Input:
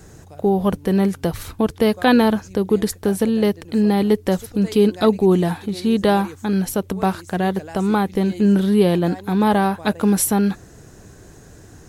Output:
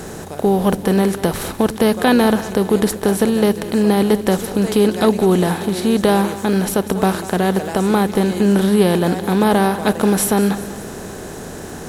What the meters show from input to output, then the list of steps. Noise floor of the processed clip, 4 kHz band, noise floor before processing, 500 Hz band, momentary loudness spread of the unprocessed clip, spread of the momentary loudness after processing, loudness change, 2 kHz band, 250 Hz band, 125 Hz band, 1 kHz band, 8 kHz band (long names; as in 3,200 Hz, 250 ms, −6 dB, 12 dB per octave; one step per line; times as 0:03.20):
−31 dBFS, +4.0 dB, −45 dBFS, +3.0 dB, 7 LU, 7 LU, +2.5 dB, +4.0 dB, +2.0 dB, +2.0 dB, +2.5 dB, +3.5 dB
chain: compressor on every frequency bin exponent 0.6
surface crackle 59 per second −30 dBFS
echo with a time of its own for lows and highs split 340 Hz, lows 104 ms, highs 193 ms, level −14.5 dB
level −1 dB